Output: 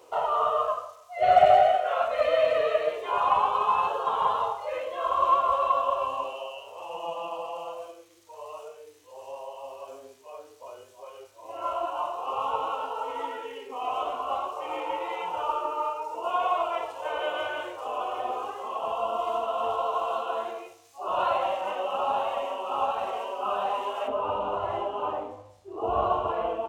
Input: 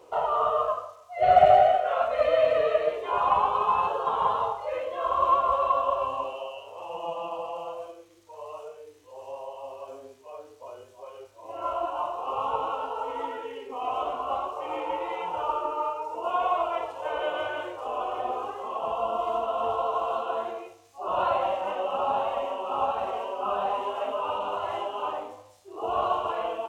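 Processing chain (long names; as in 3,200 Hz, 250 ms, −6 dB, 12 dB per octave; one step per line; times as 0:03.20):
spectral tilt +1.5 dB per octave, from 0:24.07 −2.5 dB per octave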